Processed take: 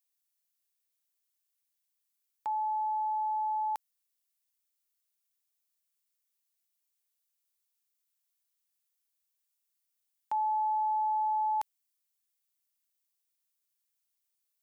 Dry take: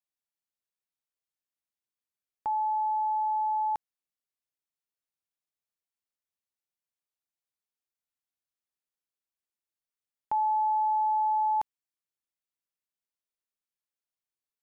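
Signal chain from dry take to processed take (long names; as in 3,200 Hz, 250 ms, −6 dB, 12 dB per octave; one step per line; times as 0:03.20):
spectral tilt +4 dB per octave
level −2.5 dB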